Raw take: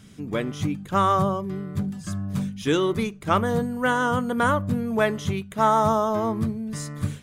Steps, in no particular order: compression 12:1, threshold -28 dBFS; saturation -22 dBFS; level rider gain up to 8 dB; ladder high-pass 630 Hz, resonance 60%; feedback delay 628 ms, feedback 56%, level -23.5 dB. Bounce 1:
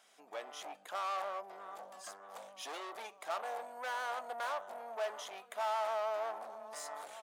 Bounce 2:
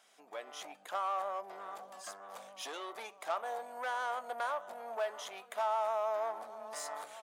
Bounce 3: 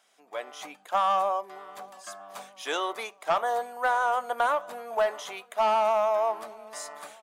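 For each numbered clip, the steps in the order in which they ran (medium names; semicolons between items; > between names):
feedback delay > level rider > saturation > compression > ladder high-pass; feedback delay > compression > level rider > saturation > ladder high-pass; ladder high-pass > saturation > compression > level rider > feedback delay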